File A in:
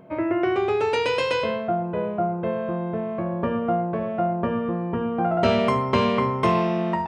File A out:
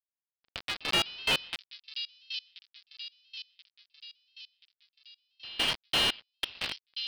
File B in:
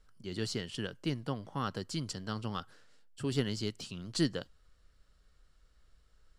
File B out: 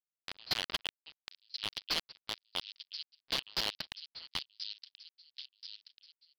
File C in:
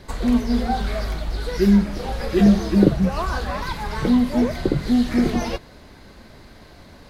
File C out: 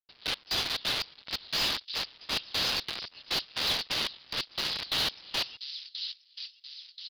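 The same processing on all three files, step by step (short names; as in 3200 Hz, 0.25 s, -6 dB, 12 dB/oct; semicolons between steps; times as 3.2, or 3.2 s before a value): steep high-pass 2700 Hz 72 dB/oct; companded quantiser 2-bit; step gate "...x..xxx.xx" 177 bpm -24 dB; on a send: thin delay 1.031 s, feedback 51%, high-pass 4200 Hz, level -9.5 dB; on the sum: downsampling 11025 Hz; slew limiter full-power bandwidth 72 Hz; gain +8.5 dB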